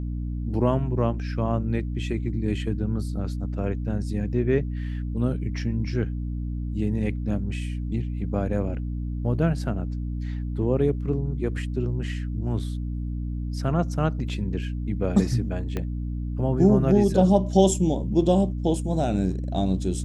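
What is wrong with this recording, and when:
hum 60 Hz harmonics 5 -29 dBFS
15.77 s: pop -16 dBFS

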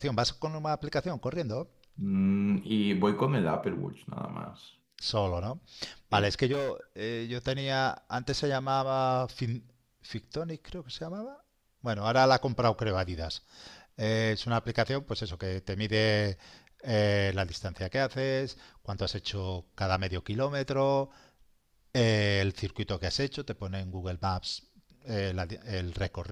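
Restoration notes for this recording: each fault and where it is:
6.52–6.71 s: clipped -28 dBFS

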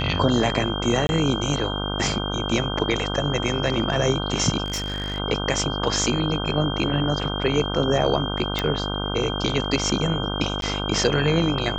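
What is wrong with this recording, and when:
buzz 50 Hz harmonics 31 -28 dBFS
whine 3.2 kHz -30 dBFS
1.07–1.09 s: dropout 21 ms
4.64–5.18 s: clipped -23 dBFS
8.59 s: pop -9 dBFS
10.61–10.62 s: dropout 12 ms

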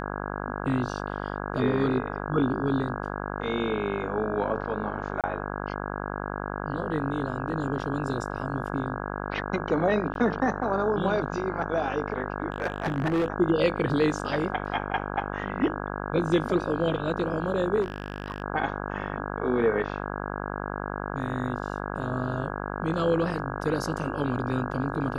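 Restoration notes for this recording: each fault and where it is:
buzz 50 Hz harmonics 33 -33 dBFS
5.21–5.24 s: dropout 27 ms
10.14–10.15 s: dropout 12 ms
12.50–13.28 s: clipped -21.5 dBFS
17.81–18.42 s: clipped -25.5 dBFS

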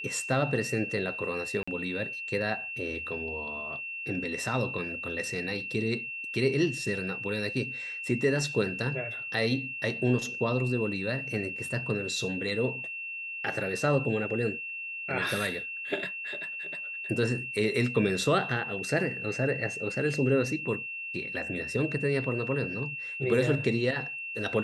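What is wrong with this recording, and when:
whine 2.7 kHz -35 dBFS
1.63–1.68 s: dropout 45 ms

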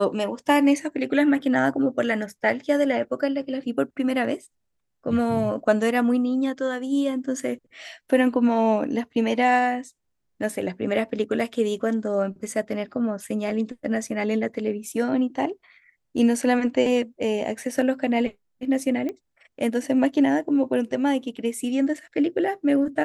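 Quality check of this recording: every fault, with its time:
19.09 s: pop -19 dBFS

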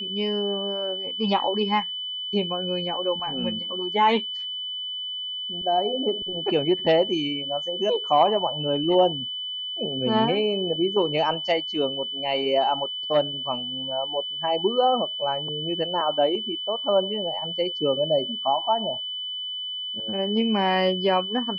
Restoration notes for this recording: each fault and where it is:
whine 3 kHz -29 dBFS

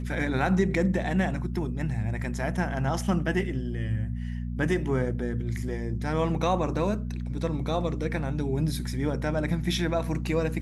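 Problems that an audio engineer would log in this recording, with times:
hum 60 Hz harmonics 4 -32 dBFS

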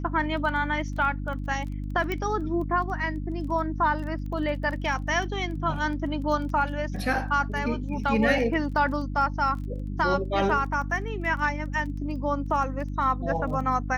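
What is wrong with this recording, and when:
crackle 15 per s -35 dBFS
hum 50 Hz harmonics 6 -32 dBFS
2.12 s: pop -16 dBFS

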